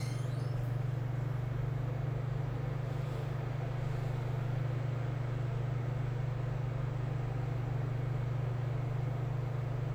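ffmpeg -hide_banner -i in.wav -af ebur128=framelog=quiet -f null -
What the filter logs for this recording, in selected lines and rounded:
Integrated loudness:
  I:         -36.3 LUFS
  Threshold: -46.3 LUFS
Loudness range:
  LRA:         0.6 LU
  Threshold: -56.3 LUFS
  LRA low:   -36.7 LUFS
  LRA high:  -36.1 LUFS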